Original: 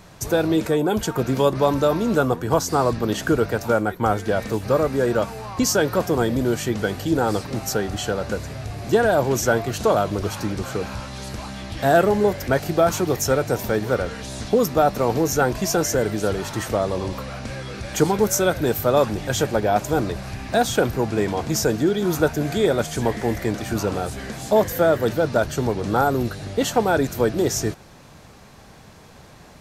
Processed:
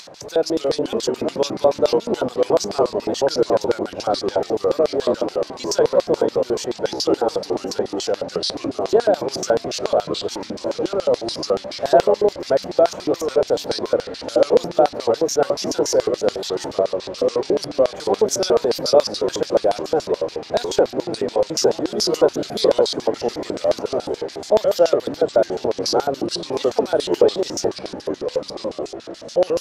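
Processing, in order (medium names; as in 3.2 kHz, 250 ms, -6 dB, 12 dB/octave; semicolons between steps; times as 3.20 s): ever faster or slower copies 211 ms, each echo -3 st, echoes 3; LFO band-pass square 7 Hz 540–4700 Hz; upward compressor, threshold -38 dBFS; trim +6.5 dB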